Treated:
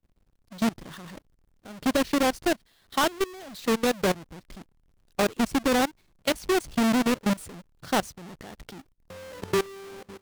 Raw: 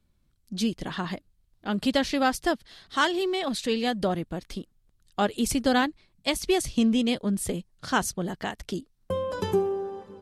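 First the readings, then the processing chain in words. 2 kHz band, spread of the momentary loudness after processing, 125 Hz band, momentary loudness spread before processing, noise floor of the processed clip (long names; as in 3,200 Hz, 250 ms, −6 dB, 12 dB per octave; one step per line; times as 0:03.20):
−0.5 dB, 21 LU, −2.5 dB, 13 LU, −66 dBFS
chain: each half-wave held at its own peak
output level in coarse steps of 21 dB
highs frequency-modulated by the lows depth 0.28 ms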